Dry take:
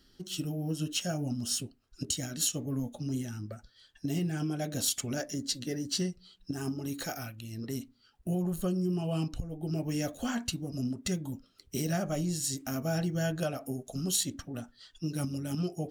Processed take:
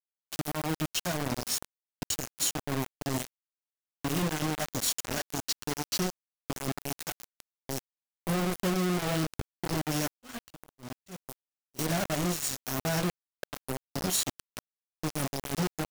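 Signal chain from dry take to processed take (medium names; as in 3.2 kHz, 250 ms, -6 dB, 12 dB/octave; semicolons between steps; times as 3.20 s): 13.11–13.53 s: cascade formant filter e; bit crusher 5-bit; 10.10–11.79 s: slow attack 384 ms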